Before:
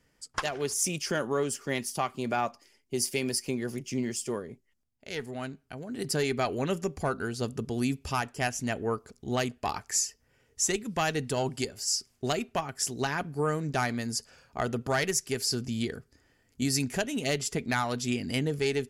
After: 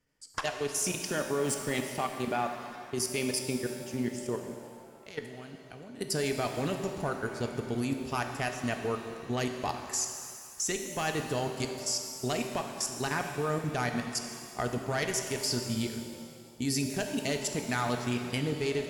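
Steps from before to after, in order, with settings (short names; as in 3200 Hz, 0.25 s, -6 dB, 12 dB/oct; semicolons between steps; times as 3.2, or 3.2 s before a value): 1.44–1.84 zero-crossing step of -35.5 dBFS; level quantiser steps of 16 dB; shimmer reverb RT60 2.1 s, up +7 st, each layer -8 dB, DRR 5 dB; gain +1 dB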